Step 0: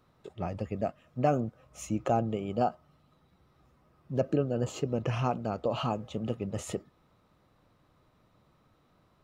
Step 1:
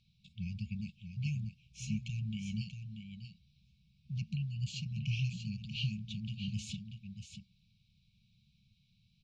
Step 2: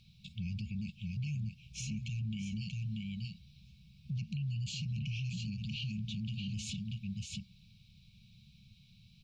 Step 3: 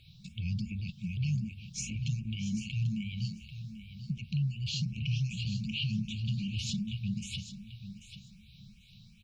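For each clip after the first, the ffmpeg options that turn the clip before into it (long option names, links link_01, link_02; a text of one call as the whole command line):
ffmpeg -i in.wav -af "lowpass=frequency=4600:width_type=q:width=1.9,aecho=1:1:636:0.398,afftfilt=real='re*(1-between(b*sr/4096,220,2200))':imag='im*(1-between(b*sr/4096,220,2200))':win_size=4096:overlap=0.75,volume=-2dB" out.wav
ffmpeg -i in.wav -filter_complex "[0:a]asplit=2[link_01][link_02];[link_02]acompressor=threshold=-47dB:ratio=6,volume=0.5dB[link_03];[link_01][link_03]amix=inputs=2:normalize=0,alimiter=level_in=11dB:limit=-24dB:level=0:latency=1:release=31,volume=-11dB,volume=3.5dB" out.wav
ffmpeg -i in.wav -filter_complex "[0:a]aecho=1:1:790|1580:0.266|0.0426,asplit=2[link_01][link_02];[link_02]afreqshift=2.6[link_03];[link_01][link_03]amix=inputs=2:normalize=1,volume=7.5dB" out.wav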